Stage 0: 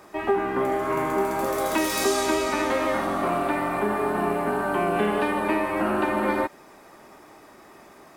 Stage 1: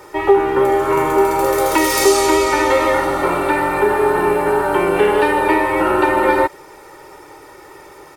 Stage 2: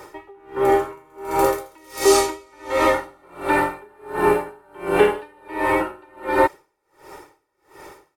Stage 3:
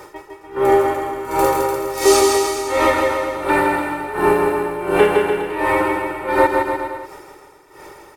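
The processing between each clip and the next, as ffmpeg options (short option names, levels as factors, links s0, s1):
-af "aecho=1:1:2.2:0.98,volume=2.11"
-af "aeval=exprs='val(0)*pow(10,-35*(0.5-0.5*cos(2*PI*1.4*n/s))/20)':c=same"
-af "aecho=1:1:160|296|411.6|509.9|593.4:0.631|0.398|0.251|0.158|0.1,volume=1.26"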